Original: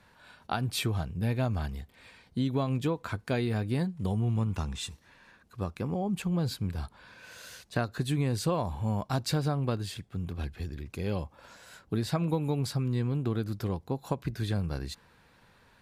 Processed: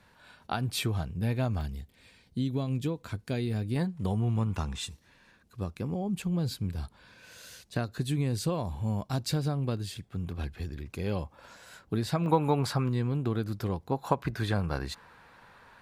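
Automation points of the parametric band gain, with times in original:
parametric band 1,100 Hz 2.2 octaves
−1 dB
from 0:01.61 −9 dB
from 0:03.76 +2.5 dB
from 0:04.85 −5 dB
from 0:10.03 +1 dB
from 0:12.26 +12.5 dB
from 0:12.89 +2 dB
from 0:13.92 +9.5 dB

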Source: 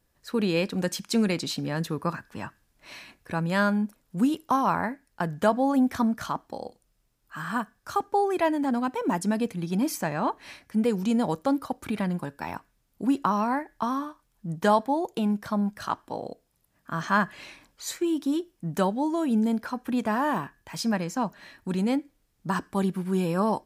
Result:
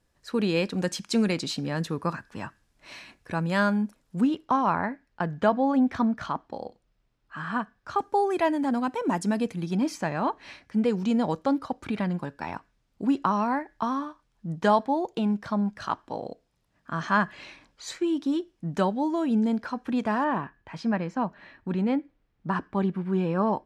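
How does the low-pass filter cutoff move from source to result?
8,900 Hz
from 0:04.21 3,800 Hz
from 0:07.99 9,400 Hz
from 0:09.73 5,600 Hz
from 0:20.24 2,600 Hz

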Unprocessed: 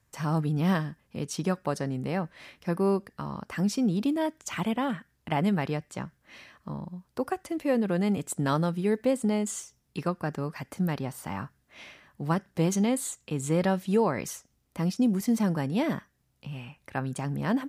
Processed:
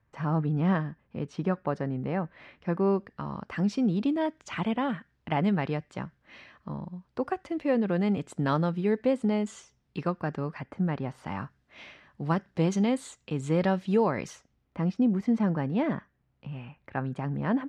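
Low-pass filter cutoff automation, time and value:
0:02.23 2,100 Hz
0:03.44 3,700 Hz
0:10.46 3,700 Hz
0:10.78 1,700 Hz
0:11.36 4,400 Hz
0:14.28 4,400 Hz
0:14.81 2,200 Hz

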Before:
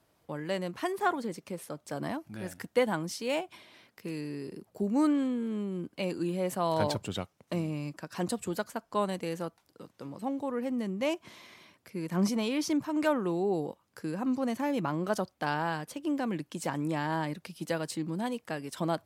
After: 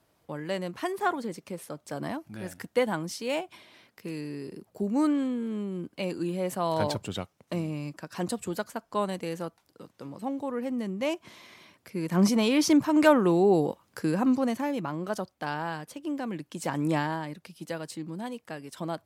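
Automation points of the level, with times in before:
0:11.39 +1 dB
0:12.72 +8 dB
0:14.17 +8 dB
0:14.83 −1.5 dB
0:16.43 −1.5 dB
0:16.96 +6 dB
0:17.20 −3 dB

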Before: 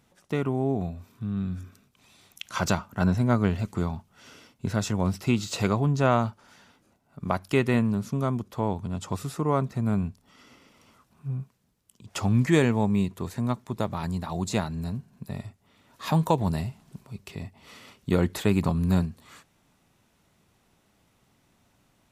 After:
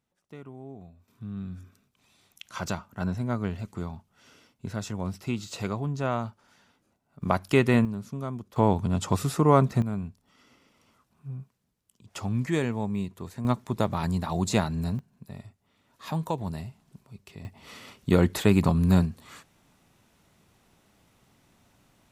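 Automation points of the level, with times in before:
−17 dB
from 0:01.08 −6.5 dB
from 0:07.22 +2 dB
from 0:07.85 −7 dB
from 0:08.56 +5.5 dB
from 0:09.82 −6 dB
from 0:13.45 +2.5 dB
from 0:14.99 −7 dB
from 0:17.45 +2.5 dB

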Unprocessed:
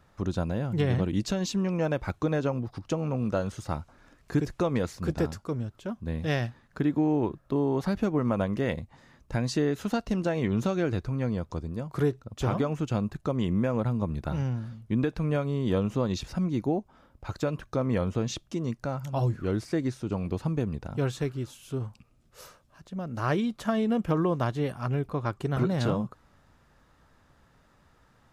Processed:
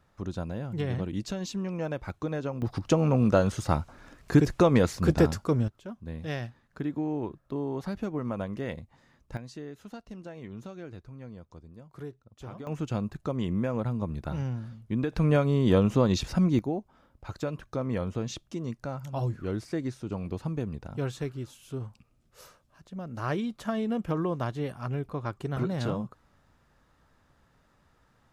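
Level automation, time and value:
−5 dB
from 0:02.62 +6 dB
from 0:05.68 −6 dB
from 0:09.37 −15 dB
from 0:12.67 −2.5 dB
from 0:15.12 +4.5 dB
from 0:16.59 −3.5 dB

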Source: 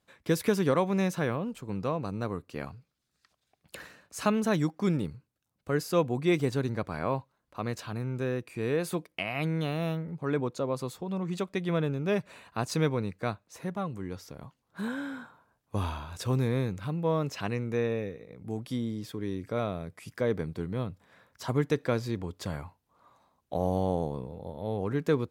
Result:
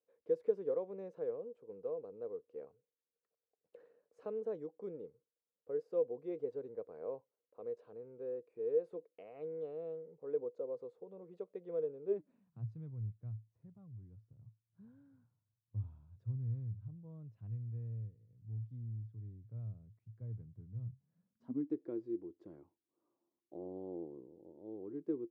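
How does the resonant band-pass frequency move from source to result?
resonant band-pass, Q 11
0:12.03 470 Hz
0:12.68 110 Hz
0:20.81 110 Hz
0:21.78 340 Hz

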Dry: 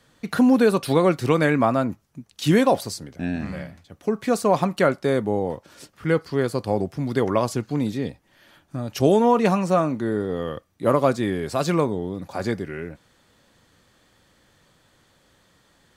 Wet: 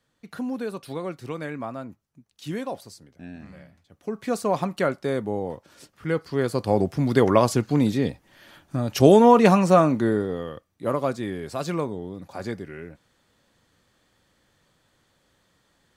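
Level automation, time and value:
0:03.61 −13.5 dB
0:04.31 −4.5 dB
0:06.12 −4.5 dB
0:06.89 +3.5 dB
0:10.05 +3.5 dB
0:10.51 −6 dB

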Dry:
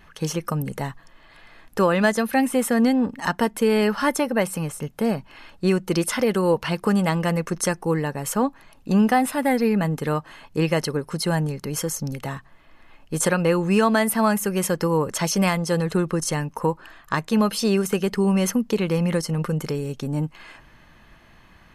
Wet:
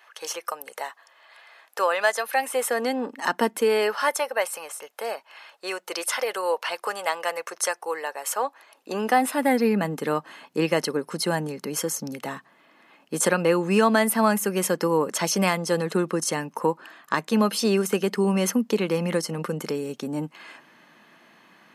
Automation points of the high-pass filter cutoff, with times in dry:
high-pass filter 24 dB per octave
0:02.29 550 Hz
0:03.47 230 Hz
0:04.17 540 Hz
0:08.36 540 Hz
0:09.59 200 Hz

